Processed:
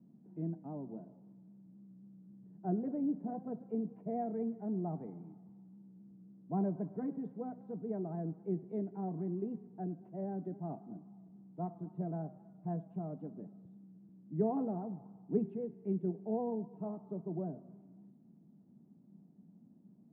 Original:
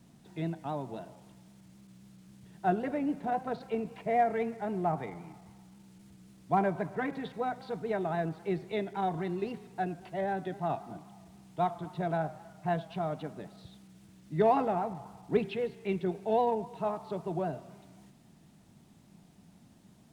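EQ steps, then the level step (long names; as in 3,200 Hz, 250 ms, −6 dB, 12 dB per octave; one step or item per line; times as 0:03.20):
four-pole ladder band-pass 250 Hz, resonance 40%
high-frequency loss of the air 220 metres
+7.5 dB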